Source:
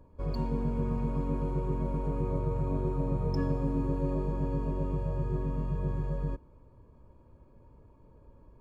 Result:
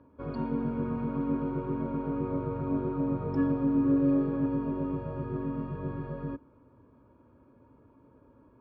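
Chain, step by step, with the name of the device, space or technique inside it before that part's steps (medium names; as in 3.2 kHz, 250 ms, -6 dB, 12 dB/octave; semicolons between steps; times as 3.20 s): 3.81–4.46 s: doubling 36 ms -4 dB; guitar cabinet (cabinet simulation 110–3600 Hz, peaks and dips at 170 Hz -5 dB, 270 Hz +9 dB, 1.4 kHz +9 dB)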